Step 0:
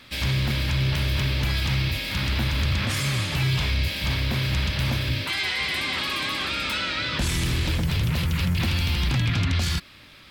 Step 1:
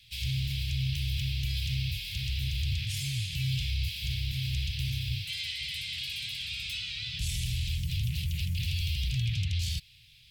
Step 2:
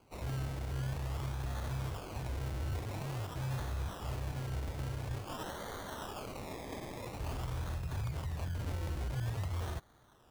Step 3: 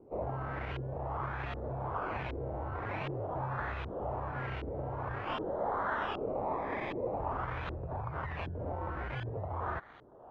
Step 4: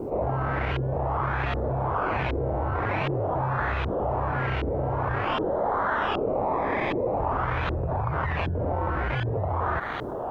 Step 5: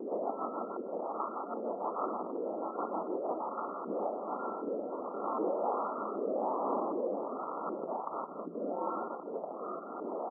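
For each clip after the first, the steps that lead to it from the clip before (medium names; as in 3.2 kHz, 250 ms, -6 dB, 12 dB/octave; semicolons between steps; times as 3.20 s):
Chebyshev band-stop 130–2700 Hz, order 3; peaking EQ 860 Hz -3 dB 2.1 oct; trim -5.5 dB
decimation with a swept rate 24×, swing 60% 0.48 Hz; trim -6.5 dB
compression, threshold -38 dBFS, peak gain reduction 6.5 dB; overdrive pedal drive 13 dB, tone 2.2 kHz, clips at -31 dBFS; LFO low-pass saw up 1.3 Hz 360–3000 Hz; trim +5 dB
level flattener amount 70%; trim +7 dB
rotary cabinet horn 6.3 Hz, later 0.85 Hz, at 3.55 s; brick-wall FIR band-pass 190–1400 Hz; delay 151 ms -14 dB; trim -4.5 dB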